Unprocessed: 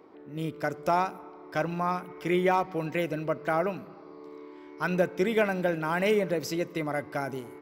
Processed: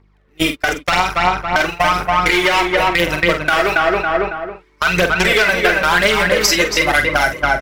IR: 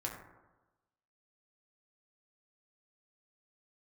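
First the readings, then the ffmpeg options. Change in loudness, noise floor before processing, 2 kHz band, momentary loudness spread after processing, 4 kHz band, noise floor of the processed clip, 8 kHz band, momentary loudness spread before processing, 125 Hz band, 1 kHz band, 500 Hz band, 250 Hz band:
+14.5 dB, −48 dBFS, +20.5 dB, 6 LU, +24.5 dB, −54 dBFS, can't be measured, 19 LU, +8.0 dB, +14.5 dB, +10.0 dB, +8.0 dB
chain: -filter_complex "[0:a]volume=22.5dB,asoftclip=hard,volume=-22.5dB,aeval=exprs='val(0)+0.0126*(sin(2*PI*50*n/s)+sin(2*PI*2*50*n/s)/2+sin(2*PI*3*50*n/s)/3+sin(2*PI*4*50*n/s)/4+sin(2*PI*5*50*n/s)/5)':channel_layout=same,acontrast=57,firequalizer=gain_entry='entry(320,0);entry(1800,15);entry(6400,11);entry(13000,6)':delay=0.05:min_phase=1,aeval=exprs='sgn(val(0))*max(abs(val(0))-0.00708,0)':channel_layout=same,bass=frequency=250:gain=-3,treble=frequency=4000:gain=4,aphaser=in_gain=1:out_gain=1:delay=3.7:decay=0.58:speed=0.99:type=triangular,agate=range=-43dB:threshold=-20dB:ratio=16:detection=peak,asplit=2[link_01][link_02];[link_02]adelay=276,lowpass=frequency=1900:poles=1,volume=-5dB,asplit=2[link_03][link_04];[link_04]adelay=276,lowpass=frequency=1900:poles=1,volume=0.26,asplit=2[link_05][link_06];[link_06]adelay=276,lowpass=frequency=1900:poles=1,volume=0.26[link_07];[link_03][link_05][link_07]amix=inputs=3:normalize=0[link_08];[link_01][link_08]amix=inputs=2:normalize=0,acompressor=threshold=-32dB:ratio=12,asplit=2[link_09][link_10];[link_10]adelay=46,volume=-8.5dB[link_11];[link_09][link_11]amix=inputs=2:normalize=0,alimiter=level_in=22.5dB:limit=-1dB:release=50:level=0:latency=1,volume=-1.5dB"

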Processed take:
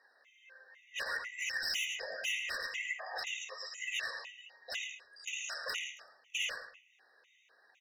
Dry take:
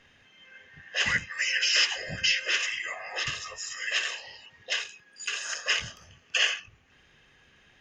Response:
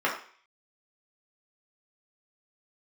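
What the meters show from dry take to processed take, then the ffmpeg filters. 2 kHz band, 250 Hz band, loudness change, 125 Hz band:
−9.0 dB, below −15 dB, −10.0 dB, below −25 dB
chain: -filter_complex "[0:a]highpass=frequency=420:width=0.5412,highpass=frequency=420:width=1.3066,bandreject=frequency=3200:width=9.6,asplit=2[link_01][link_02];[link_02]alimiter=limit=-22.5dB:level=0:latency=1:release=120,volume=0dB[link_03];[link_01][link_03]amix=inputs=2:normalize=0,asoftclip=type=hard:threshold=-19.5dB,flanger=delay=1:depth=1.2:regen=47:speed=1.3:shape=triangular,asplit=2[link_04][link_05];[link_05]adelay=109,lowpass=frequency=3200:poles=1,volume=-4dB,asplit=2[link_06][link_07];[link_07]adelay=109,lowpass=frequency=3200:poles=1,volume=0.28,asplit=2[link_08][link_09];[link_09]adelay=109,lowpass=frequency=3200:poles=1,volume=0.28,asplit=2[link_10][link_11];[link_11]adelay=109,lowpass=frequency=3200:poles=1,volume=0.28[link_12];[link_06][link_08][link_10][link_12]amix=inputs=4:normalize=0[link_13];[link_04][link_13]amix=inputs=2:normalize=0,afftfilt=real='re*gt(sin(2*PI*2*pts/sr)*(1-2*mod(floor(b*sr/1024/1900),2)),0)':imag='im*gt(sin(2*PI*2*pts/sr)*(1-2*mod(floor(b*sr/1024/1900),2)),0)':win_size=1024:overlap=0.75,volume=-6dB"

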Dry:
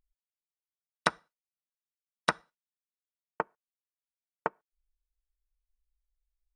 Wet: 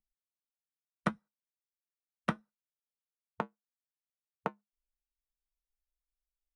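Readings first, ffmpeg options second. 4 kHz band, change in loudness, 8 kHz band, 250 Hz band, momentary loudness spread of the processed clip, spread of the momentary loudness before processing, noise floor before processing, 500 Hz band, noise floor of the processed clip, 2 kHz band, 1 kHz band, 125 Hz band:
−13.0 dB, −5.0 dB, −15.0 dB, +5.0 dB, 6 LU, 6 LU, below −85 dBFS, −4.5 dB, below −85 dBFS, −8.5 dB, −6.0 dB, +5.5 dB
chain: -filter_complex "[0:a]equalizer=frequency=4000:width=0.67:gain=-9,afwtdn=0.00501,asplit=2[link_01][link_02];[link_02]asoftclip=type=hard:threshold=-16dB,volume=-5dB[link_03];[link_01][link_03]amix=inputs=2:normalize=0,equalizer=frequency=210:width=7.6:gain=12.5,acrossover=split=270|3000[link_04][link_05][link_06];[link_05]acompressor=threshold=-33dB:ratio=6[link_07];[link_04][link_07][link_06]amix=inputs=3:normalize=0,flanger=delay=6.2:depth=1.4:regen=-66:speed=0.73:shape=sinusoidal,volume=5dB"

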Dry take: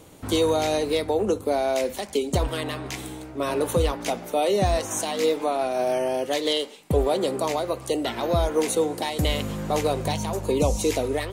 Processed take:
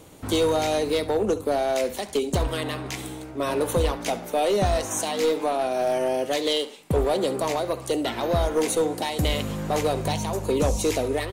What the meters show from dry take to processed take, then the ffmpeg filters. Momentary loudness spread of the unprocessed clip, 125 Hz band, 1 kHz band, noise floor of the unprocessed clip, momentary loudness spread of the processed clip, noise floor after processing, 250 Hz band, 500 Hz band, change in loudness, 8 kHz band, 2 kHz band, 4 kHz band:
6 LU, 0.0 dB, 0.0 dB, −41 dBFS, 5 LU, −39 dBFS, 0.0 dB, 0.0 dB, 0.0 dB, +0.5 dB, +0.5 dB, 0.0 dB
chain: -af "acontrast=67,aecho=1:1:70:0.141,aeval=exprs='clip(val(0),-1,0.251)':channel_layout=same,volume=-6dB"

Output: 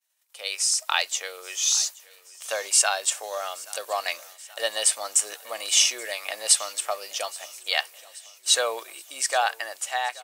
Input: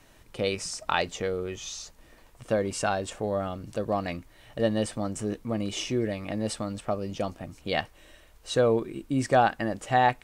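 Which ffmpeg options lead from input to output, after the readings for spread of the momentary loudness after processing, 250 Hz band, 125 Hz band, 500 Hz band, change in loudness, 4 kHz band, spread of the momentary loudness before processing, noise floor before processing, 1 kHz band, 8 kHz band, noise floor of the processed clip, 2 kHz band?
14 LU, below −25 dB, below −40 dB, −5.5 dB, +4.5 dB, +11.5 dB, 13 LU, −56 dBFS, −2.0 dB, +17.5 dB, −53 dBFS, +4.5 dB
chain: -filter_complex "[0:a]agate=range=-33dB:threshold=-45dB:ratio=3:detection=peak,highpass=frequency=610:width=0.5412,highpass=frequency=610:width=1.3066,dynaudnorm=framelen=110:gausssize=9:maxgain=14.5dB,crystalizer=i=8.5:c=0,asplit=2[link_01][link_02];[link_02]aecho=0:1:827|1654|2481|3308|4135:0.0841|0.0505|0.0303|0.0182|0.0109[link_03];[link_01][link_03]amix=inputs=2:normalize=0,volume=-14dB"

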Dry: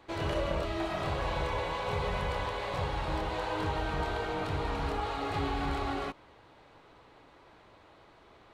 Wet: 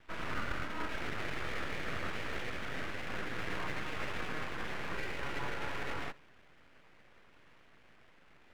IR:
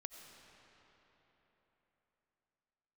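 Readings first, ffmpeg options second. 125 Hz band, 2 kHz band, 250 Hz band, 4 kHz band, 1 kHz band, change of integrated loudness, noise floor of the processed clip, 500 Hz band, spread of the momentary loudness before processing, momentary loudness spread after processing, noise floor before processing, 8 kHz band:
−10.5 dB, +0.5 dB, −7.0 dB, −4.5 dB, −9.0 dB, −6.0 dB, −61 dBFS, −10.0 dB, 2 LU, 2 LU, −58 dBFS, −1.5 dB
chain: -filter_complex "[0:a]highpass=frequency=240:width_type=q:width=0.5412,highpass=frequency=240:width_type=q:width=1.307,lowpass=frequency=2000:width_type=q:width=0.5176,lowpass=frequency=2000:width_type=q:width=0.7071,lowpass=frequency=2000:width_type=q:width=1.932,afreqshift=150[link_01];[1:a]atrim=start_sample=2205,afade=type=out:start_time=0.13:duration=0.01,atrim=end_sample=6174[link_02];[link_01][link_02]afir=irnorm=-1:irlink=0,aeval=exprs='abs(val(0))':channel_layout=same,volume=4.5dB"

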